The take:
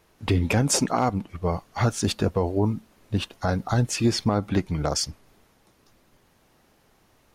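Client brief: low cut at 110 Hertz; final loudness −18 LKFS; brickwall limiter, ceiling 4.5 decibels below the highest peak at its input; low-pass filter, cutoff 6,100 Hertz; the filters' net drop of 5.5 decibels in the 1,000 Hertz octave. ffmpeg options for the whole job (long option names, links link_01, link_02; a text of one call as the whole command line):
ffmpeg -i in.wav -af "highpass=110,lowpass=6100,equalizer=frequency=1000:width_type=o:gain=-8,volume=10.5dB,alimiter=limit=-4.5dB:level=0:latency=1" out.wav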